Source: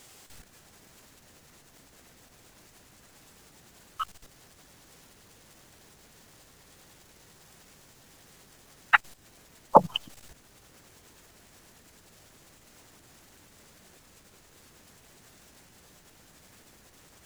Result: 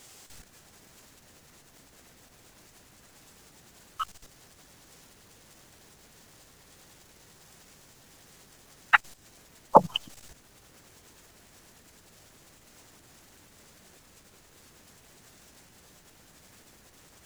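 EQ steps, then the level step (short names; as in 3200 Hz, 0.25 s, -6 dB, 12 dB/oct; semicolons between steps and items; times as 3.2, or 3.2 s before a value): dynamic EQ 6400 Hz, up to +3 dB, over -59 dBFS, Q 1.1; 0.0 dB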